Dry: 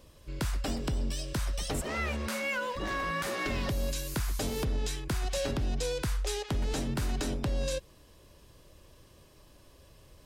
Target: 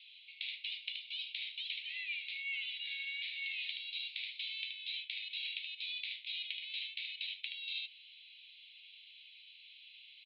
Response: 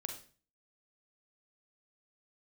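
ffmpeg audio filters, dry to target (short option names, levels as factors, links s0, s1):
-af "asuperpass=centerf=3000:order=12:qfactor=1.6,aecho=1:1:76:0.335,areverse,acompressor=threshold=0.00251:ratio=6,areverse,volume=4.47"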